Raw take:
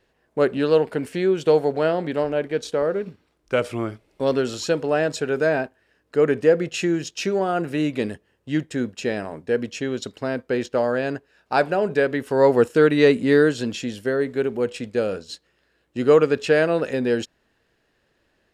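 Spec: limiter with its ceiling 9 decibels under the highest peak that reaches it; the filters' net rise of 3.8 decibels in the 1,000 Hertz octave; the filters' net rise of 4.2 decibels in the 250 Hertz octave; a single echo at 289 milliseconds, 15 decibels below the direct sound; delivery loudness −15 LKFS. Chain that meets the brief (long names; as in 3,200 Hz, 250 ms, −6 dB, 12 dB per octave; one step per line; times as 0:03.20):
parametric band 250 Hz +5 dB
parametric band 1,000 Hz +5 dB
brickwall limiter −9.5 dBFS
single-tap delay 289 ms −15 dB
level +6.5 dB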